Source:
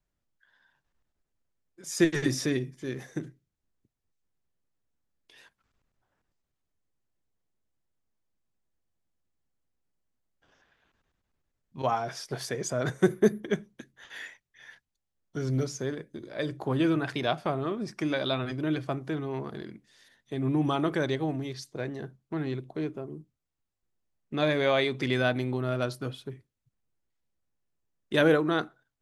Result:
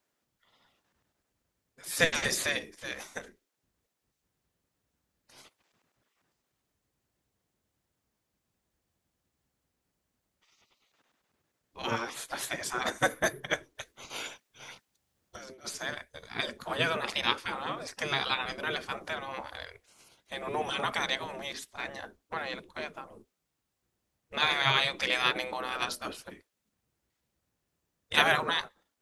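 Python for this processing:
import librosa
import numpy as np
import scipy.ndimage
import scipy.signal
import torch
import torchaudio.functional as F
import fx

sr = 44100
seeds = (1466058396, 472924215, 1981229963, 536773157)

y = fx.spec_gate(x, sr, threshold_db=-15, keep='weak')
y = fx.over_compress(y, sr, threshold_db=-50.0, ratio=-0.5, at=(13.75, 15.67))
y = y * 10.0 ** (8.5 / 20.0)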